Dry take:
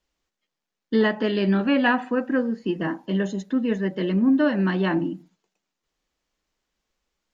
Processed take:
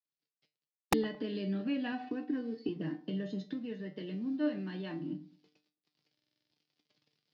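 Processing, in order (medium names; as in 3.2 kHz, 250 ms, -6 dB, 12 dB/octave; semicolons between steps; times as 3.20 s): companding laws mixed up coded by A; recorder AGC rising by 65 dB/s; Chebyshev band-pass 120–4900 Hz, order 4; peaking EQ 1.2 kHz -14.5 dB 2.3 oct; feedback comb 150 Hz, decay 0.25 s, harmonics all, mix 80%; integer overflow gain 18 dB; 1.92–2.69 s: comb 2.7 ms, depth 81%; 3.48–5.10 s: bass shelf 400 Hz -5.5 dB; on a send: bucket-brigade echo 109 ms, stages 1024, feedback 33%, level -21 dB; on the sum: buffer glitch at 6.14 s, samples 2048, times 7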